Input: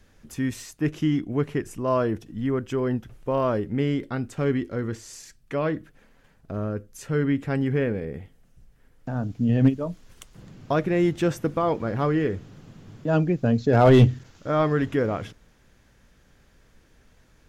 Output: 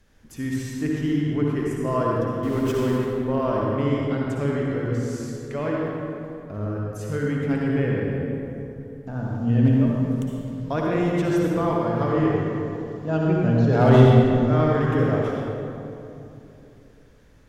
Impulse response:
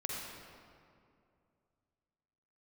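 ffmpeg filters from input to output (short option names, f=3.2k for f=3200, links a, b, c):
-filter_complex "[0:a]asettb=1/sr,asplit=3[a][b][c];[a]atrim=end=2.434[d];[b]atrim=start=2.43:end=2.98,asetpts=PTS-STARTPTS,afade=t=in:d=0.004:c=qsin,afade=t=out:st=0.546:d=0.004:c=qsin,aeval=exprs='val(0)+0.5*0.0299*sgn(val(0))':c=same[e];[c]atrim=start=2.976[f];[d][e]acrossfade=d=0.004:c1=hsin:c2=qsin[g];[g][f]acrossfade=d=0.004:c1=qsin:c2=hsin[h];[1:a]atrim=start_sample=2205,asetrate=34839,aresample=44100[i];[h][i]afir=irnorm=-1:irlink=0,volume=-2.5dB"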